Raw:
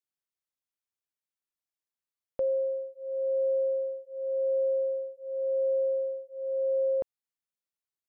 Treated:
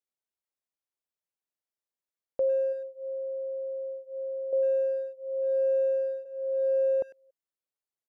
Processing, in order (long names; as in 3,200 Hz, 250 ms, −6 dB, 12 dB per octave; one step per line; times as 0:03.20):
parametric band 530 Hz +7.5 dB 1.8 octaves
0:02.72–0:04.53: downward compressor 16 to 1, threshold −26 dBFS, peak gain reduction 9 dB
far-end echo of a speakerphone 100 ms, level −18 dB
0:05.88–0:06.56: delay throw 370 ms, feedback 15%, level −16 dB
level −5.5 dB